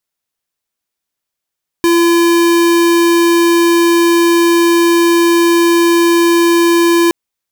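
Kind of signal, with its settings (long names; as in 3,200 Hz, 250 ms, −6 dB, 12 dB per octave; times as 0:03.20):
tone square 340 Hz −9.5 dBFS 5.27 s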